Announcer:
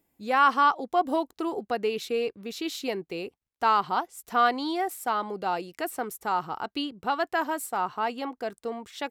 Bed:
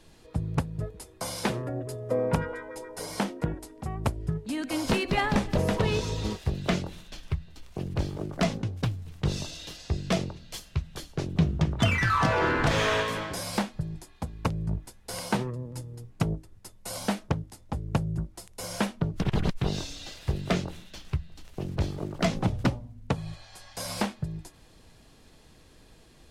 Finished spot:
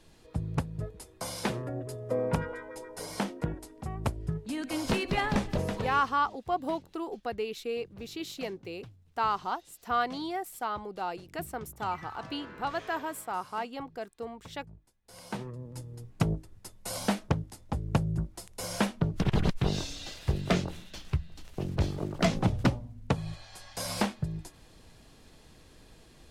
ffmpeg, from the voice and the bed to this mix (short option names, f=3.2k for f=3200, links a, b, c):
-filter_complex "[0:a]adelay=5550,volume=-6dB[a];[1:a]volume=19dB,afade=t=out:st=5.44:d=0.68:silence=0.112202,afade=t=in:st=15.02:d=1.23:silence=0.0794328[b];[a][b]amix=inputs=2:normalize=0"